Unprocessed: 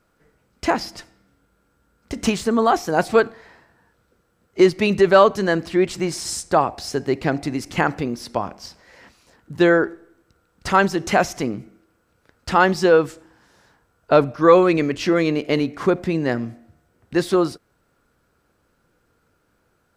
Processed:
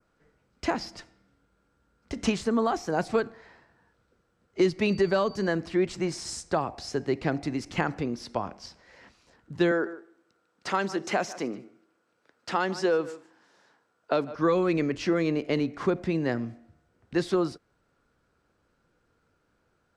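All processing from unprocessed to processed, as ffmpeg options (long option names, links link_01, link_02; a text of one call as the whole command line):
ffmpeg -i in.wav -filter_complex "[0:a]asettb=1/sr,asplit=3[link_01][link_02][link_03];[link_01]atrim=end=4.884[link_04];[link_02]atrim=start=4.88:end=5.48,asetpts=PTS-STARTPTS,afade=type=in:duration=0.004:curve=qsin,afade=type=out:start_time=0.596:duration=0.004:curve=qsin,bandreject=frequency=1300:width=24,aeval=exprs='val(0)+0.0112*sin(2*PI*4600*n/s)':channel_layout=same[link_05];[link_03]atrim=start=5.476[link_06];[link_04][link_05]acrossfade=duration=0.004:curve1=hsin:curve2=qsin[link_07];[link_07][link_06]acrossfade=duration=0.004:curve1=qsin:curve2=hsin,asettb=1/sr,asplit=3[link_08][link_09][link_10];[link_08]atrim=end=9.714[link_11];[link_09]atrim=start=9.71:end=14.35,asetpts=PTS-STARTPTS,afade=type=in:duration=0.004:curve=qsin,afade=type=out:start_time=4.636:duration=0.004:curve=qsin,highpass=250,aecho=1:1:150:0.1,atrim=end_sample=204624[link_12];[link_10]atrim=start=14.346[link_13];[link_11][link_12]acrossfade=duration=0.004:curve1=hsin:curve2=qsin[link_14];[link_14][link_13]acrossfade=duration=0.004:curve1=qsin:curve2=hsin,lowpass=7100,adynamicequalizer=threshold=0.0112:dfrequency=3400:dqfactor=1.4:tfrequency=3400:tqfactor=1.4:attack=5:release=100:ratio=0.375:range=3:mode=cutabove:tftype=bell,acrossover=split=290|3000[link_15][link_16][link_17];[link_16]acompressor=threshold=-18dB:ratio=6[link_18];[link_15][link_18][link_17]amix=inputs=3:normalize=0,volume=-5.5dB" out.wav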